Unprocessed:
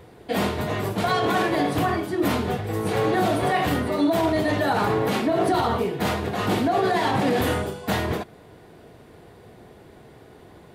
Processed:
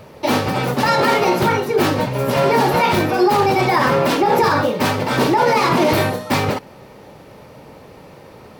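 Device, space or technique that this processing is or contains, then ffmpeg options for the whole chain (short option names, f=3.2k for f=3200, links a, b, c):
nightcore: -af "asetrate=55125,aresample=44100,volume=6.5dB"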